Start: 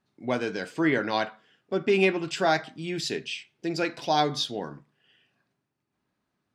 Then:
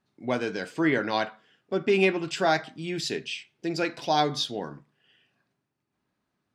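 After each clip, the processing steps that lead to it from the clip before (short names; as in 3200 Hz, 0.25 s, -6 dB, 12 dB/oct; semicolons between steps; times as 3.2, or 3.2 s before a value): nothing audible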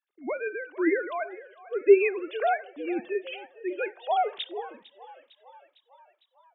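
sine-wave speech; frequency-shifting echo 0.454 s, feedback 60%, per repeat +44 Hz, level -19 dB; on a send at -22 dB: reverb RT60 0.55 s, pre-delay 4 ms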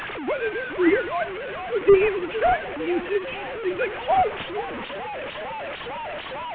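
delta modulation 16 kbps, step -31 dBFS; gain +5.5 dB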